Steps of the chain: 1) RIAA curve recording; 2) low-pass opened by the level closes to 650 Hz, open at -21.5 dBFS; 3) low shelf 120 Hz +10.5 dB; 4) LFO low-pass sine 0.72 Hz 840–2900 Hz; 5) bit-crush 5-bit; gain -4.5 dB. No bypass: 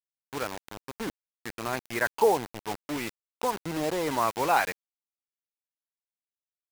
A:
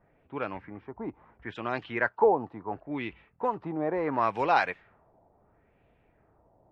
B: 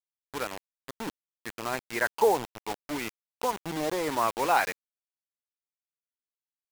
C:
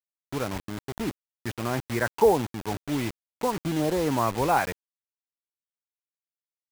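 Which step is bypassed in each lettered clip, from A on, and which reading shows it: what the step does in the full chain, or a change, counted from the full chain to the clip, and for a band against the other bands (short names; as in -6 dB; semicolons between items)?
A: 5, distortion -11 dB; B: 3, 125 Hz band -3.0 dB; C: 1, 125 Hz band +9.5 dB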